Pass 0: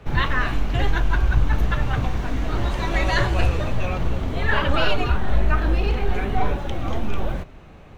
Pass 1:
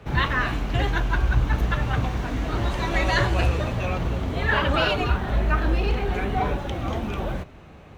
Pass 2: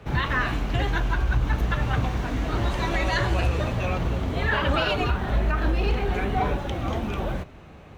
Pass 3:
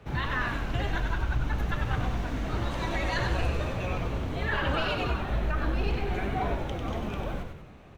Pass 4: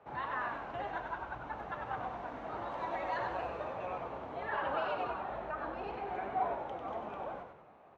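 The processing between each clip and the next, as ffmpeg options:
ffmpeg -i in.wav -af "highpass=47" out.wav
ffmpeg -i in.wav -af "alimiter=limit=-13.5dB:level=0:latency=1:release=104" out.wav
ffmpeg -i in.wav -filter_complex "[0:a]asplit=7[link_01][link_02][link_03][link_04][link_05][link_06][link_07];[link_02]adelay=96,afreqshift=-62,volume=-5.5dB[link_08];[link_03]adelay=192,afreqshift=-124,volume=-12.1dB[link_09];[link_04]adelay=288,afreqshift=-186,volume=-18.6dB[link_10];[link_05]adelay=384,afreqshift=-248,volume=-25.2dB[link_11];[link_06]adelay=480,afreqshift=-310,volume=-31.7dB[link_12];[link_07]adelay=576,afreqshift=-372,volume=-38.3dB[link_13];[link_01][link_08][link_09][link_10][link_11][link_12][link_13]amix=inputs=7:normalize=0,volume=-6dB" out.wav
ffmpeg -i in.wav -af "bandpass=frequency=820:width_type=q:width=1.7:csg=0" out.wav

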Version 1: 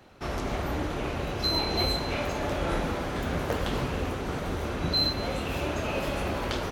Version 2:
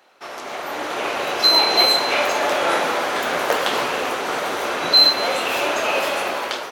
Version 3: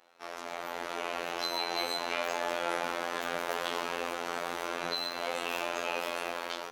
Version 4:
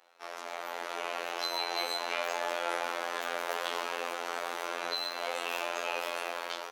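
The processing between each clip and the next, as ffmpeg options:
ffmpeg -i in.wav -af "highpass=580,dynaudnorm=framelen=330:gausssize=5:maxgain=11.5dB,volume=2.5dB" out.wav
ffmpeg -i in.wav -af "acompressor=threshold=-29dB:ratio=1.5,afftfilt=real='hypot(re,im)*cos(PI*b)':imag='0':win_size=2048:overlap=0.75,volume=-5.5dB" out.wav
ffmpeg -i in.wav -af "highpass=400" out.wav

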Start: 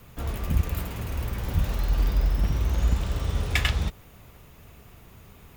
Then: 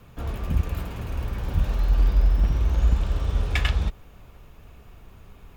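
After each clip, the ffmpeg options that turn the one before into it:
ffmpeg -i in.wav -af "aemphasis=mode=reproduction:type=cd,bandreject=frequency=2000:width=15,asubboost=boost=3:cutoff=56" out.wav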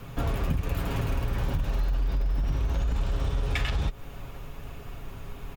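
ffmpeg -i in.wav -af "alimiter=limit=-17dB:level=0:latency=1:release=27,aecho=1:1:7.3:0.39,acompressor=threshold=-31dB:ratio=6,volume=7.5dB" out.wav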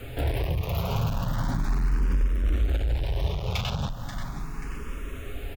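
ffmpeg -i in.wav -filter_complex "[0:a]asoftclip=type=hard:threshold=-27dB,aecho=1:1:534|1068|1602|2136:0.335|0.124|0.0459|0.017,asplit=2[link_01][link_02];[link_02]afreqshift=0.37[link_03];[link_01][link_03]amix=inputs=2:normalize=1,volume=7dB" out.wav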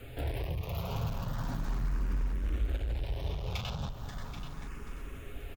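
ffmpeg -i in.wav -af "aecho=1:1:782:0.282,volume=-8dB" out.wav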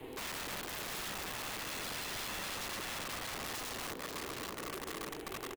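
ffmpeg -i in.wav -filter_complex "[0:a]asplit=2[link_01][link_02];[link_02]aeval=exprs='sgn(val(0))*max(abs(val(0))-0.00376,0)':channel_layout=same,volume=-12dB[link_03];[link_01][link_03]amix=inputs=2:normalize=0,aeval=exprs='val(0)*sin(2*PI*380*n/s)':channel_layout=same,aeval=exprs='(mod(66.8*val(0)+1,2)-1)/66.8':channel_layout=same,volume=1dB" out.wav

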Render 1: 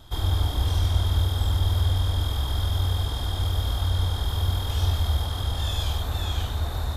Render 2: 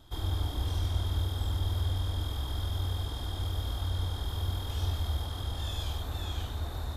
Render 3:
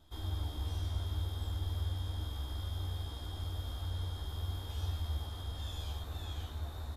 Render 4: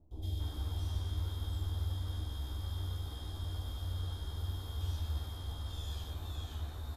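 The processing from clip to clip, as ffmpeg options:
ffmpeg -i in.wav -af "equalizer=frequency=310:width=1.9:gain=4.5,volume=-8dB" out.wav
ffmpeg -i in.wav -filter_complex "[0:a]asplit=2[link_01][link_02];[link_02]adelay=13,volume=-4dB[link_03];[link_01][link_03]amix=inputs=2:normalize=0,volume=-8.5dB" out.wav
ffmpeg -i in.wav -filter_complex "[0:a]acrossover=split=690|2300[link_01][link_02][link_03];[link_03]adelay=110[link_04];[link_02]adelay=280[link_05];[link_01][link_05][link_04]amix=inputs=3:normalize=0" out.wav

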